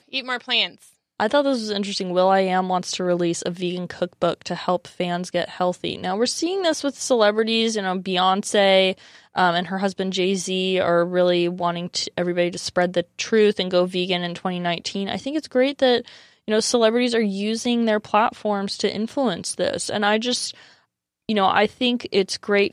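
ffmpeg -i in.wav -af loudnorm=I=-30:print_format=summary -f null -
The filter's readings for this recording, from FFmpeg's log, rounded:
Input Integrated:    -21.6 LUFS
Input True Peak:      -3.4 dBTP
Input LRA:             3.2 LU
Input Threshold:     -31.8 LUFS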